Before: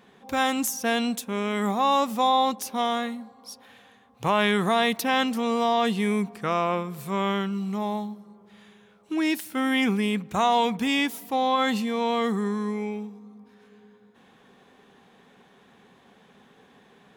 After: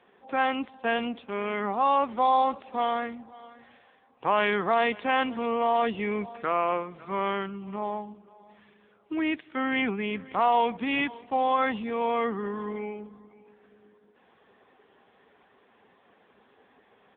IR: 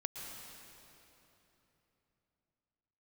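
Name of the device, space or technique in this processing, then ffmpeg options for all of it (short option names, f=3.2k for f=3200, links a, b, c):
satellite phone: -af "highpass=310,lowpass=3.3k,aecho=1:1:540:0.0891" -ar 8000 -c:a libopencore_amrnb -b:a 6700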